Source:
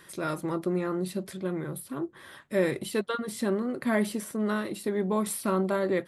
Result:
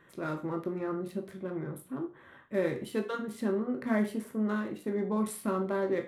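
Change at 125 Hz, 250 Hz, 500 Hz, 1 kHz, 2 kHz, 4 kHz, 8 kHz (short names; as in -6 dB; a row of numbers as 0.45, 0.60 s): -4.0, -2.5, -3.5, -4.0, -5.0, -9.5, -10.0 dB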